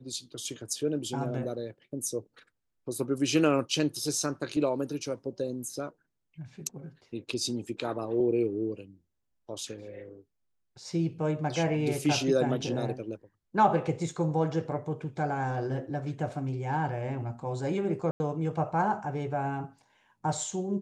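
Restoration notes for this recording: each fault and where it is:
18.11–18.20 s: dropout 90 ms

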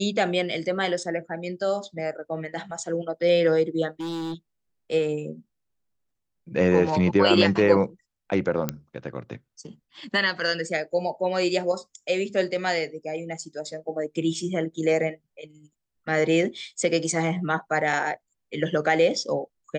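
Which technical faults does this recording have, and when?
4.00–4.34 s: clipped -28.5 dBFS
8.69 s: pop -10 dBFS

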